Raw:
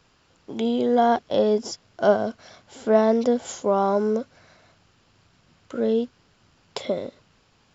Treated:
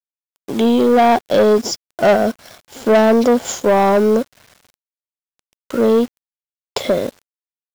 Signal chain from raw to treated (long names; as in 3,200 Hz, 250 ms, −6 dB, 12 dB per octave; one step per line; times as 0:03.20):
bit-depth reduction 8 bits, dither none
leveller curve on the samples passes 3